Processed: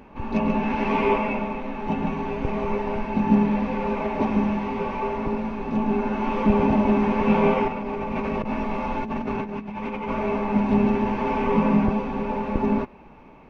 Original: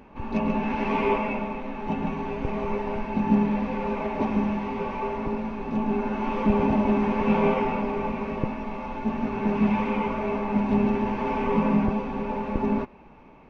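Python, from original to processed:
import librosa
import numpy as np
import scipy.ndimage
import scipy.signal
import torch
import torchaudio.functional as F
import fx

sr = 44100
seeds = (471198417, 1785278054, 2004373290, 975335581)

y = fx.over_compress(x, sr, threshold_db=-31.0, ratio=-1.0, at=(7.68, 10.09))
y = y * librosa.db_to_amplitude(2.5)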